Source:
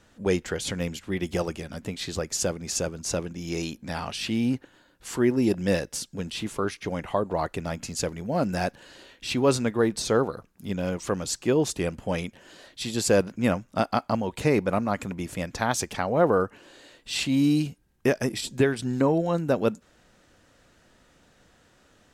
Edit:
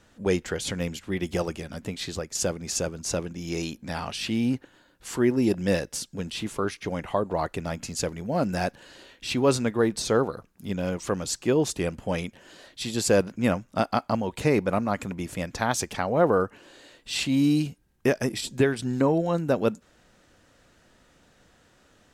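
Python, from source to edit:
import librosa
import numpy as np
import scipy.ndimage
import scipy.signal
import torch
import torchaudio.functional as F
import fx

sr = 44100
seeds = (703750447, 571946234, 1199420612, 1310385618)

y = fx.edit(x, sr, fx.fade_out_to(start_s=2.06, length_s=0.29, floor_db=-7.0), tone=tone)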